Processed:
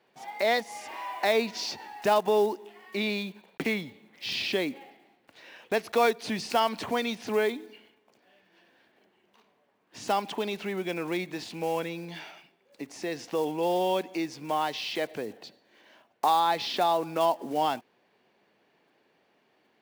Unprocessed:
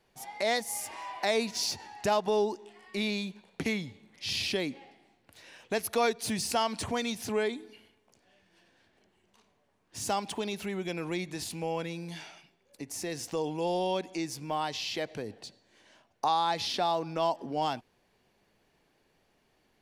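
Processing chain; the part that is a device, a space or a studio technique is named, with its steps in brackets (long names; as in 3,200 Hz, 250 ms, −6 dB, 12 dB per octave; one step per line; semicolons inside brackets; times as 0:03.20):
early digital voice recorder (band-pass filter 220–3,700 Hz; one scale factor per block 5 bits)
level +4 dB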